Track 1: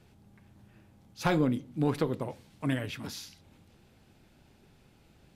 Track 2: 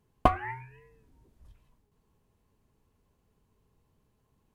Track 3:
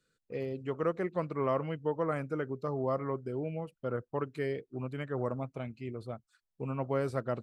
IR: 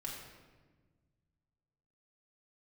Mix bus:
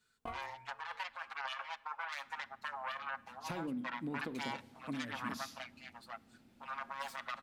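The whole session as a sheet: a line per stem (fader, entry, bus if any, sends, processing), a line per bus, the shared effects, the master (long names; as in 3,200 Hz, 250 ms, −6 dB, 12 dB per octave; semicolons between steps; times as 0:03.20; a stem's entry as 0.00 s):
0:02.89 −15 dB → 0:03.54 −7.5 dB, 2.25 s, no bus, send −13 dB, parametric band 240 Hz +13.5 dB 0.33 octaves; mains-hum notches 50/100/150/200 Hz; downward compressor 12 to 1, threshold −31 dBFS, peak gain reduction 16 dB
−6.0 dB, 0.00 s, bus A, send −17.5 dB, mains-hum notches 60/120 Hz; tuned comb filter 230 Hz, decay 0.21 s, harmonics all, mix 80%
−2.5 dB, 0.00 s, bus A, send −18.5 dB, phase distortion by the signal itself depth 0.7 ms; inverse Chebyshev high-pass filter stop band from 410 Hz, stop band 40 dB; comb filter 7.4 ms, depth 86%
bus A: 0.0 dB, compressor whose output falls as the input rises −38 dBFS, ratio −0.5; brickwall limiter −30.5 dBFS, peak gain reduction 7.5 dB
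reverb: on, RT60 1.4 s, pre-delay 3 ms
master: low-shelf EQ 68 Hz −7.5 dB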